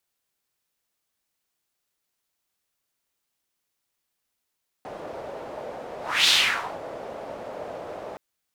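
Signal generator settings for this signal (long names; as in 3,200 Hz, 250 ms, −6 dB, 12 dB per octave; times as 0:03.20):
pass-by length 3.32 s, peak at 0:01.43, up 0.29 s, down 0.54 s, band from 600 Hz, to 3,700 Hz, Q 2.7, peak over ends 18.5 dB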